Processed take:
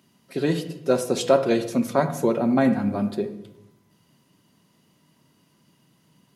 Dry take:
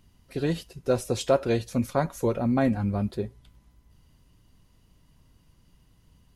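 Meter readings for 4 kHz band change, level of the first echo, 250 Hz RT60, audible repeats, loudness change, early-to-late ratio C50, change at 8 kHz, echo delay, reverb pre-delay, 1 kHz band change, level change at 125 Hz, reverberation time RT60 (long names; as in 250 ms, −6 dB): +4.0 dB, no echo audible, 1.2 s, no echo audible, +4.0 dB, 11.0 dB, +4.0 dB, no echo audible, 3 ms, +4.5 dB, −1.5 dB, 0.85 s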